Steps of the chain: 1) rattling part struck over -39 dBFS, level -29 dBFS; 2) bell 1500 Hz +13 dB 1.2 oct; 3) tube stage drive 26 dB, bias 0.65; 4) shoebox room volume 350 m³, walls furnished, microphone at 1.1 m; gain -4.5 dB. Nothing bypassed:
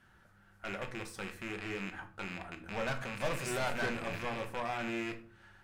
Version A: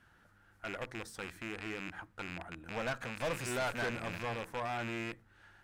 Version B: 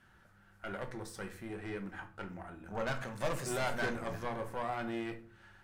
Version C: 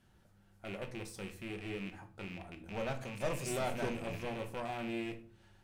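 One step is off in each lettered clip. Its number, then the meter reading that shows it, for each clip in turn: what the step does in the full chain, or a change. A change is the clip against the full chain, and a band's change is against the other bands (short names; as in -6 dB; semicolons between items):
4, echo-to-direct -5.0 dB to none; 1, 4 kHz band -3.5 dB; 2, 2 kHz band -6.0 dB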